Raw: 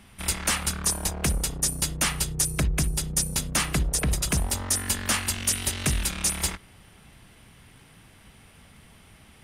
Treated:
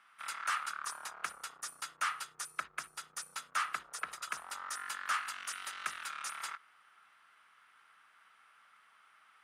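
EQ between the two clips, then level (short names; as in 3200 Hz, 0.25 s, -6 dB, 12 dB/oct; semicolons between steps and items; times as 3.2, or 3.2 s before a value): band-pass 1300 Hz, Q 4.9; tilt +3.5 dB/oct; +1.0 dB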